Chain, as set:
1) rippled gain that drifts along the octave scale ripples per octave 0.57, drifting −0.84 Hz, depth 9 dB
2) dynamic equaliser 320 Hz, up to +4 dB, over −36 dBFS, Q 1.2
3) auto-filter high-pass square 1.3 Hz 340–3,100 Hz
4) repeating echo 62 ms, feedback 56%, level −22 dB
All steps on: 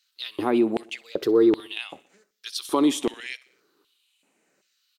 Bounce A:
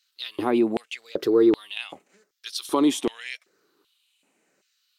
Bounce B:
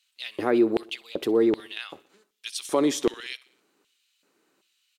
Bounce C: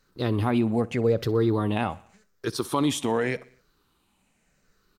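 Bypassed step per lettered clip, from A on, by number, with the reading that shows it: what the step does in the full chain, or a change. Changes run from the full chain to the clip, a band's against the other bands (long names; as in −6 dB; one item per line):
4, echo-to-direct ratio −20.5 dB to none audible
1, 8 kHz band +2.0 dB
3, 125 Hz band +19.0 dB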